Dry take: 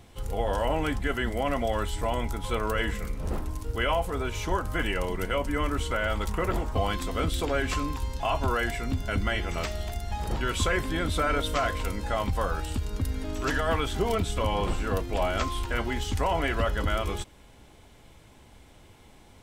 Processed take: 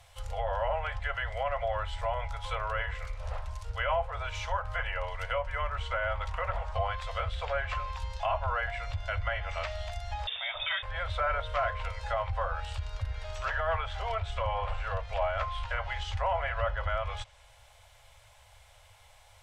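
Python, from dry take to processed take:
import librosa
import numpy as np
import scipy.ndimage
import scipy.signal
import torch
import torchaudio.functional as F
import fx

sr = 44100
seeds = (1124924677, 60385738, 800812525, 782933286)

y = fx.freq_invert(x, sr, carrier_hz=3600, at=(10.27, 10.83))
y = scipy.signal.sosfilt(scipy.signal.ellip(3, 1.0, 40, [110.0, 560.0], 'bandstop', fs=sr, output='sos'), y)
y = fx.low_shelf(y, sr, hz=440.0, db=-4.5)
y = fx.env_lowpass_down(y, sr, base_hz=1900.0, full_db=-27.0)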